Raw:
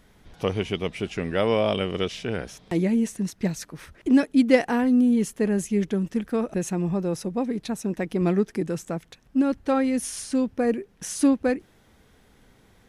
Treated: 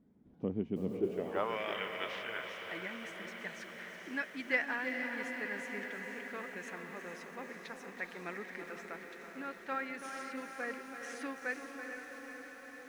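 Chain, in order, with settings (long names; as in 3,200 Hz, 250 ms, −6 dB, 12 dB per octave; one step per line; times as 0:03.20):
feedback delay with all-pass diffusion 472 ms, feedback 71%, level −6.5 dB
band-pass filter sweep 240 Hz → 1,800 Hz, 0:00.88–0:01.61
feedback echo at a low word length 331 ms, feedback 55%, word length 9 bits, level −9.5 dB
level −2 dB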